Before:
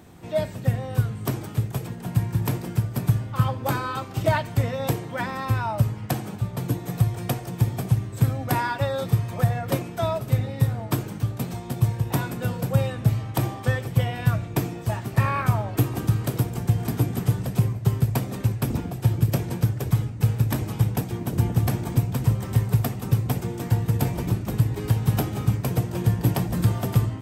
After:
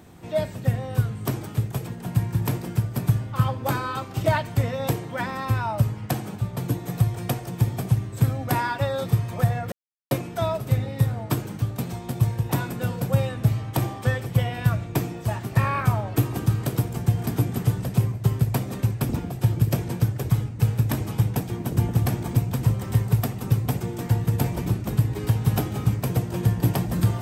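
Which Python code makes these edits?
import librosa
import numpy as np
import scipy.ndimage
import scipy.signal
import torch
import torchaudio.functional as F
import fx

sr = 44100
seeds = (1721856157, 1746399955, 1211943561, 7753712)

y = fx.edit(x, sr, fx.insert_silence(at_s=9.72, length_s=0.39), tone=tone)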